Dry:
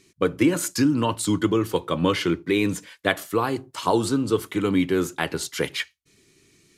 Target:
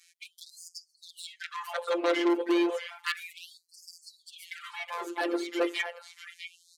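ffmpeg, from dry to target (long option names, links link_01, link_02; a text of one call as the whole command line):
ffmpeg -i in.wav -filter_complex "[0:a]acrossover=split=200|3900[link_01][link_02][link_03];[link_03]acompressor=threshold=-46dB:ratio=12[link_04];[link_01][link_02][link_04]amix=inputs=3:normalize=0,adynamicequalizer=threshold=0.0282:dfrequency=470:dqfactor=1:tfrequency=470:tqfactor=1:attack=5:release=100:ratio=0.375:range=2.5:mode=boostabove:tftype=bell,asplit=2[link_05][link_06];[link_06]aecho=0:1:649|1298|1947:0.266|0.0665|0.0166[link_07];[link_05][link_07]amix=inputs=2:normalize=0,afftfilt=real='hypot(re,im)*cos(PI*b)':imag='0':win_size=1024:overlap=0.75,aeval=exprs='0.168*(abs(mod(val(0)/0.168+3,4)-2)-1)':channel_layout=same,aeval=exprs='(tanh(15.8*val(0)+0.1)-tanh(0.1))/15.8':channel_layout=same,afftfilt=real='re*gte(b*sr/1024,230*pow(4600/230,0.5+0.5*sin(2*PI*0.32*pts/sr)))':imag='im*gte(b*sr/1024,230*pow(4600/230,0.5+0.5*sin(2*PI*0.32*pts/sr)))':win_size=1024:overlap=0.75,volume=3.5dB" out.wav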